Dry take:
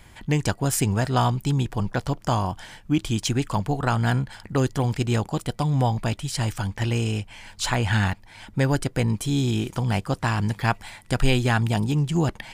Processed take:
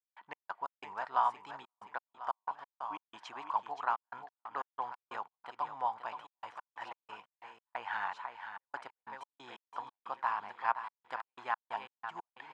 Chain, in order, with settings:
repeating echo 522 ms, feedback 44%, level −9 dB
gate pattern ".x.x.xxxxx.x.x" 91 BPM −60 dB
four-pole ladder band-pass 1,100 Hz, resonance 60%
level +1 dB

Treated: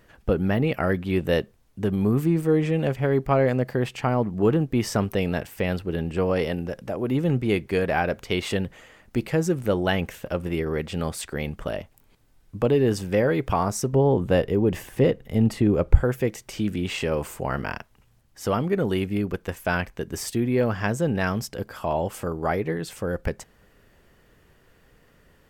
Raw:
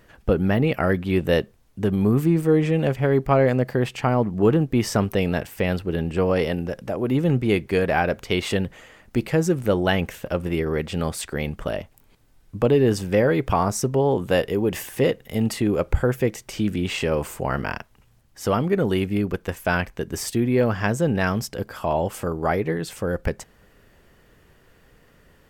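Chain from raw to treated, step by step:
0:13.93–0:16.03: spectral tilt −2 dB per octave
level −2.5 dB

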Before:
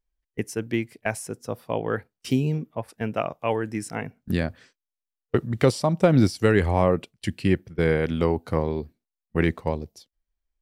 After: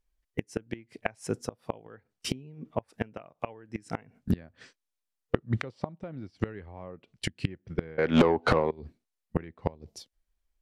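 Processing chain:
treble cut that deepens with the level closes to 2,800 Hz, closed at −19.5 dBFS
gate with flip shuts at −17 dBFS, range −26 dB
0:07.98–0:08.71: mid-hump overdrive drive 36 dB, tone 2,100 Hz, clips at −12 dBFS
level +3 dB

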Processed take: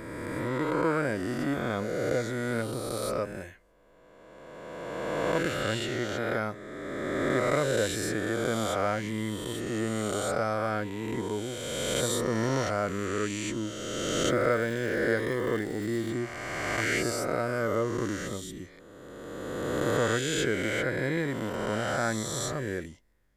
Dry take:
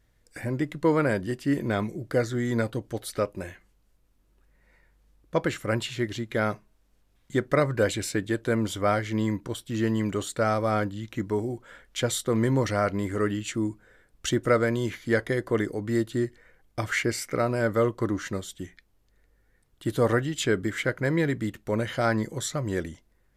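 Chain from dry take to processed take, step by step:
peak hold with a rise ahead of every peak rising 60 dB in 2.46 s
0:14.28–0:16.13: surface crackle 280 per second −31 dBFS
level −7 dB

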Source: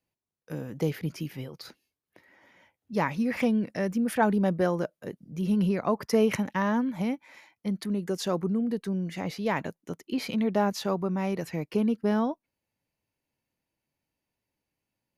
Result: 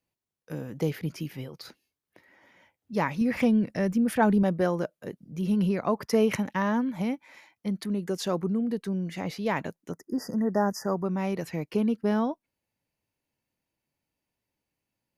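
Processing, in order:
0:03.21–0:04.43: low-shelf EQ 140 Hz +10 dB
floating-point word with a short mantissa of 8 bits
0:09.91–0:11.05: linear-phase brick-wall band-stop 2,000–4,700 Hz

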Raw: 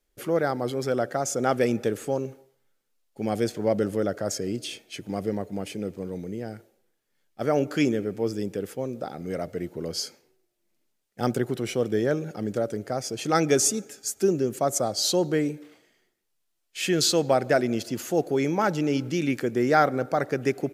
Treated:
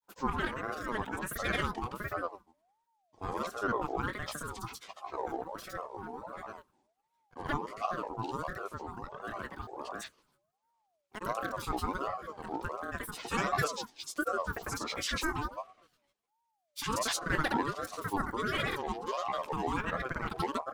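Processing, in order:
double-tracking delay 48 ms −5 dB
granular cloud, pitch spread up and down by 12 semitones
ring modulator whose carrier an LFO sweeps 750 Hz, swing 25%, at 1.4 Hz
level −6.5 dB

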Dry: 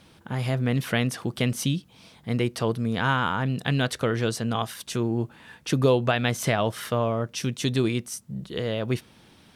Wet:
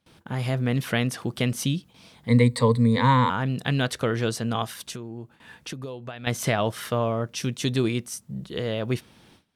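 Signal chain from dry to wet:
0:02.28–0:03.30: EQ curve with evenly spaced ripples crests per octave 0.99, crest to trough 18 dB
0:04.90–0:06.27: downward compressor 5 to 1, threshold −35 dBFS, peak gain reduction 17.5 dB
noise gate with hold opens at −44 dBFS

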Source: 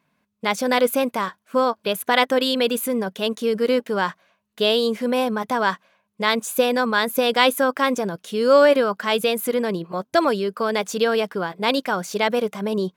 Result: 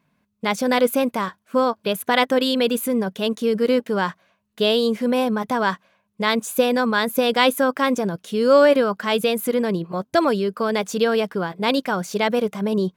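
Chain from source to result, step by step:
low-shelf EQ 220 Hz +8.5 dB
level −1 dB

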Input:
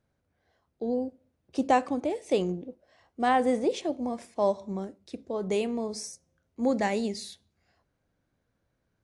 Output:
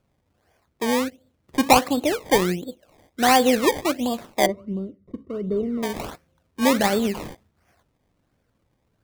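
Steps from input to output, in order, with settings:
sample-and-hold swept by an LFO 22×, swing 100% 1.4 Hz
0:04.46–0:05.83: moving average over 53 samples
level +7 dB

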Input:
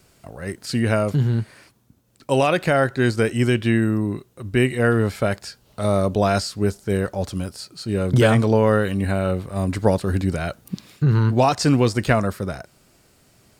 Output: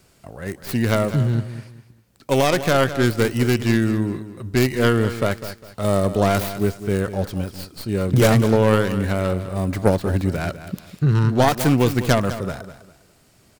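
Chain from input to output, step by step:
stylus tracing distortion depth 0.47 ms
repeating echo 202 ms, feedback 30%, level −12.5 dB

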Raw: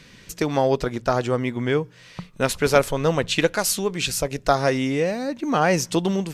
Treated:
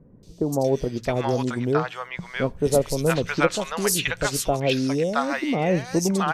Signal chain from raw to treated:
three-band delay without the direct sound lows, highs, mids 230/670 ms, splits 750/4,200 Hz

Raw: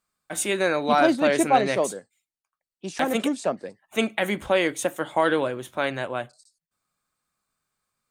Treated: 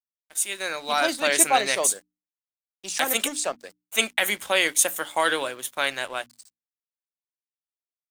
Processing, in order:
fade in at the beginning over 1.37 s
spectral tilt +4.5 dB per octave
dead-zone distortion −46 dBFS
mains-hum notches 60/120/180/240/300 Hz

